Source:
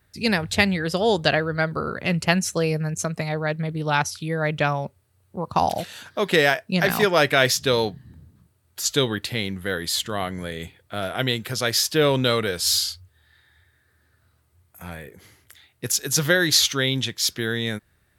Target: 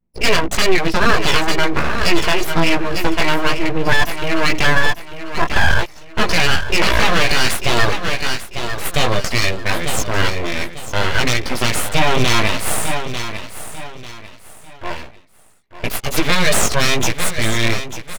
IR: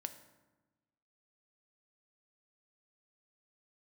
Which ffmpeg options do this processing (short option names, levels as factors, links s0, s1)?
-filter_complex "[0:a]anlmdn=2.51,asplit=3[s0][s1][s2];[s0]bandpass=f=300:t=q:w=8,volume=1[s3];[s1]bandpass=f=870:t=q:w=8,volume=0.501[s4];[s2]bandpass=f=2240:t=q:w=8,volume=0.355[s5];[s3][s4][s5]amix=inputs=3:normalize=0,equalizer=f=250:w=6.4:g=-10.5,aecho=1:1:1.5:0.79,aeval=exprs='clip(val(0),-1,0.0335)':c=same,flanger=delay=16.5:depth=2.1:speed=1.4,aeval=exprs='abs(val(0))':c=same,asplit=2[s6][s7];[s7]aecho=0:1:894|1788|2682:0.251|0.0779|0.0241[s8];[s6][s8]amix=inputs=2:normalize=0,alimiter=level_in=50.1:limit=0.891:release=50:level=0:latency=1,volume=0.891"